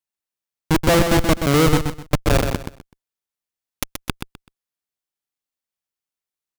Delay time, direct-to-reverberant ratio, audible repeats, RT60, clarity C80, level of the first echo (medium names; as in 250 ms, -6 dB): 127 ms, no reverb, 3, no reverb, no reverb, -7.0 dB